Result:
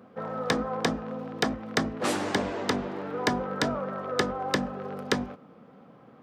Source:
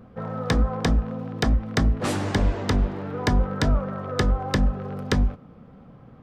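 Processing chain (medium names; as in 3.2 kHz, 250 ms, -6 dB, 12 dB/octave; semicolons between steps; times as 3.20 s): high-pass 260 Hz 12 dB/octave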